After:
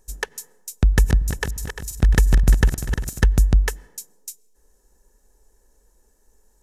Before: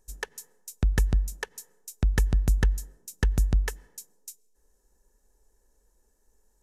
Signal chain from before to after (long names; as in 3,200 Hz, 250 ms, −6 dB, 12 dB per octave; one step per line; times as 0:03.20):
0:00.87–0:03.25: feedback delay that plays each chunk backwards 174 ms, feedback 70%, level −7.5 dB
level +7.5 dB